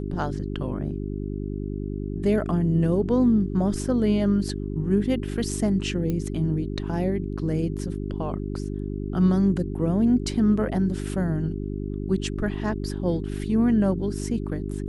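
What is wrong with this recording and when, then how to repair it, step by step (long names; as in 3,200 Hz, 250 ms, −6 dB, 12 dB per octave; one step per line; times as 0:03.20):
mains hum 50 Hz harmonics 8 −30 dBFS
0:06.10: click −16 dBFS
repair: click removal
hum removal 50 Hz, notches 8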